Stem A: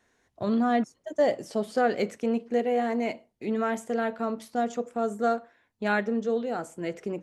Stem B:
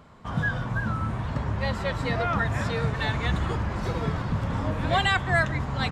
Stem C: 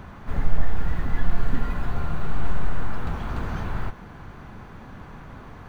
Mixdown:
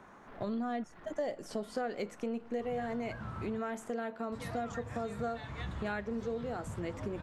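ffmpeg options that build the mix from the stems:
ffmpeg -i stem1.wav -i stem2.wav -i stem3.wav -filter_complex "[0:a]volume=-1dB[link_01];[1:a]flanger=delay=7.7:depth=9.7:regen=-61:speed=0.43:shape=triangular,adelay=2350,volume=-8dB,asplit=3[link_02][link_03][link_04];[link_02]atrim=end=3.59,asetpts=PTS-STARTPTS,afade=type=out:start_time=3.586:duration=0.004:curve=hsin[link_05];[link_03]atrim=start=3.59:end=4.32,asetpts=PTS-STARTPTS,volume=0[link_06];[link_04]atrim=start=4.32,asetpts=PTS-STARTPTS,afade=type=in:duration=0.004:curve=hsin[link_07];[link_05][link_06][link_07]concat=n=3:v=0:a=1[link_08];[2:a]acrossover=split=220 2400:gain=0.1 1 0.251[link_09][link_10][link_11];[link_09][link_10][link_11]amix=inputs=3:normalize=0,alimiter=level_in=6.5dB:limit=-24dB:level=0:latency=1:release=84,volume=-6.5dB,asoftclip=type=tanh:threshold=-38dB,volume=-8dB[link_12];[link_01][link_08][link_12]amix=inputs=3:normalize=0,acompressor=threshold=-36dB:ratio=3" out.wav

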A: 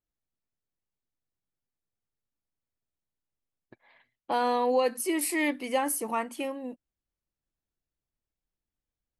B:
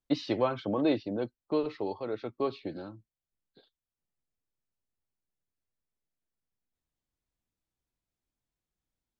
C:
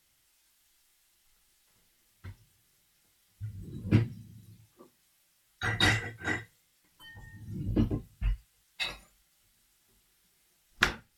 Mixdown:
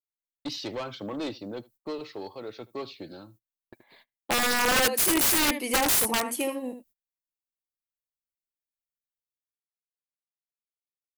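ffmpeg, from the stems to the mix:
ffmpeg -i stem1.wav -i stem2.wav -filter_complex "[0:a]equalizer=frequency=410:width_type=o:width=2.9:gain=4,volume=0.5dB,asplit=2[link_01][link_02];[link_02]volume=-9.5dB[link_03];[1:a]highshelf=frequency=4300:gain=5,asoftclip=type=tanh:threshold=-24.5dB,adelay=350,volume=-2.5dB,asplit=2[link_04][link_05];[link_05]volume=-23dB[link_06];[link_03][link_06]amix=inputs=2:normalize=0,aecho=0:1:77:1[link_07];[link_01][link_04][link_07]amix=inputs=3:normalize=0,aemphasis=mode=production:type=75fm,agate=range=-25dB:threshold=-56dB:ratio=16:detection=peak,aeval=exprs='(mod(7.08*val(0)+1,2)-1)/7.08':channel_layout=same" out.wav

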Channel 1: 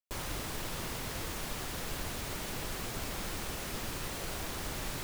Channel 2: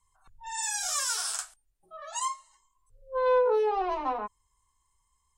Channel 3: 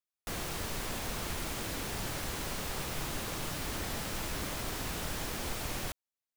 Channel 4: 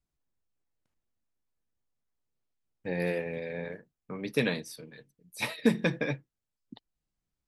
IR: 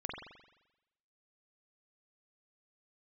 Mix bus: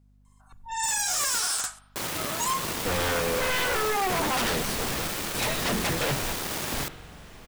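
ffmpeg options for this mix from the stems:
-filter_complex "[0:a]highpass=140,acrusher=bits=5:mix=0:aa=0.5,adelay=1850,volume=1dB,asplit=2[link_01][link_02];[link_02]volume=-8.5dB[link_03];[1:a]adelay=250,volume=-1dB,asplit=2[link_04][link_05];[link_05]volume=-15.5dB[link_06];[2:a]equalizer=frequency=15000:width_type=o:width=0.77:gain=-6.5,adelay=2100,volume=-2dB,asplit=2[link_07][link_08];[link_08]volume=-15dB[link_09];[3:a]equalizer=frequency=660:width_type=o:width=2.2:gain=6,aeval=exprs='val(0)+0.000631*(sin(2*PI*50*n/s)+sin(2*PI*2*50*n/s)/2+sin(2*PI*3*50*n/s)/3+sin(2*PI*4*50*n/s)/4+sin(2*PI*5*50*n/s)/5)':channel_layout=same,volume=0.5dB,asplit=2[link_10][link_11];[link_11]apad=whole_len=373416[link_12];[link_07][link_12]sidechaingate=range=-33dB:threshold=-51dB:ratio=16:detection=peak[link_13];[4:a]atrim=start_sample=2205[link_14];[link_03][link_06][link_09]amix=inputs=3:normalize=0[link_15];[link_15][link_14]afir=irnorm=-1:irlink=0[link_16];[link_01][link_04][link_13][link_10][link_16]amix=inputs=5:normalize=0,acontrast=50,aeval=exprs='0.0891*(abs(mod(val(0)/0.0891+3,4)-2)-1)':channel_layout=same"

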